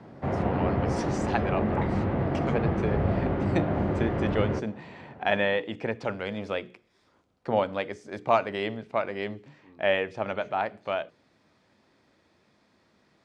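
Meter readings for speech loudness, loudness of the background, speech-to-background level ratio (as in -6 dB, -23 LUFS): -31.0 LUFS, -28.0 LUFS, -3.0 dB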